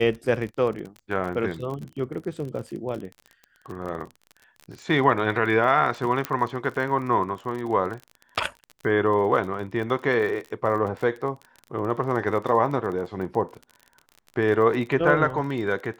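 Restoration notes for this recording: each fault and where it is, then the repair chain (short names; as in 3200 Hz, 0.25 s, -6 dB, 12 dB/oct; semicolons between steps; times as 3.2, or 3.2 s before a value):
crackle 35/s -32 dBFS
6.25 pop -10 dBFS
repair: de-click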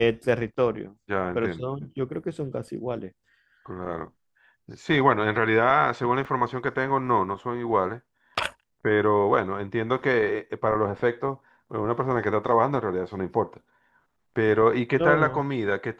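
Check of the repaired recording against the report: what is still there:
6.25 pop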